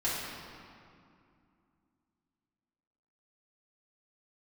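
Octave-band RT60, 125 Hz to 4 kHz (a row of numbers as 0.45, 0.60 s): 3.0, 3.4, 2.4, 2.4, 2.0, 1.6 s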